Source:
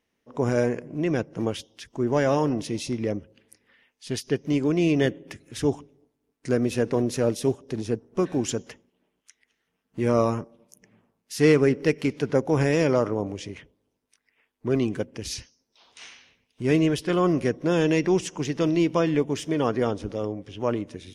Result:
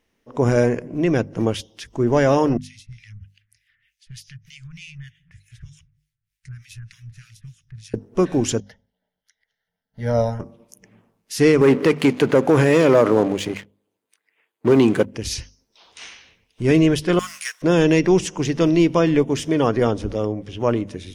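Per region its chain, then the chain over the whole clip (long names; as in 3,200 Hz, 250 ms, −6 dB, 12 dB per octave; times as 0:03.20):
0:02.57–0:07.94: inverse Chebyshev band-stop filter 300–750 Hz, stop band 60 dB + downward compressor 3 to 1, threshold −42 dBFS + two-band tremolo in antiphase 3.3 Hz, depth 100%, crossover 1,400 Hz
0:08.60–0:10.40: phaser with its sweep stopped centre 1,700 Hz, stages 8 + expander for the loud parts, over −37 dBFS
0:11.61–0:15.06: parametric band 5,500 Hz −11 dB 0.25 octaves + leveller curve on the samples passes 2 + Bessel high-pass filter 200 Hz
0:17.19–0:17.62: mu-law and A-law mismatch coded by mu + high-pass filter 1,500 Hz 24 dB per octave + parametric band 8,700 Hz +12 dB 1.3 octaves
whole clip: low-shelf EQ 67 Hz +11 dB; mains-hum notches 50/100/150/200/250 Hz; boost into a limiter +10 dB; level −4.5 dB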